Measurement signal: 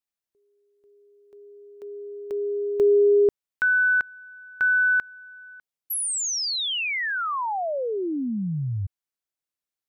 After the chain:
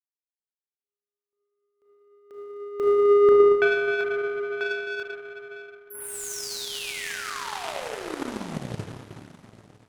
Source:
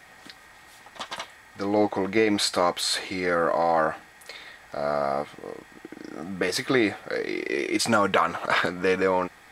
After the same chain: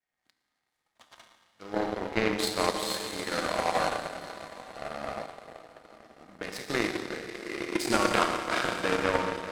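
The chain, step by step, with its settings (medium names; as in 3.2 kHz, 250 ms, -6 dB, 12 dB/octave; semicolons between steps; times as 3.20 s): echo that smears into a reverb 889 ms, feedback 43%, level -9.5 dB; Schroeder reverb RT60 3.1 s, combs from 25 ms, DRR -2 dB; power-law waveshaper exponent 2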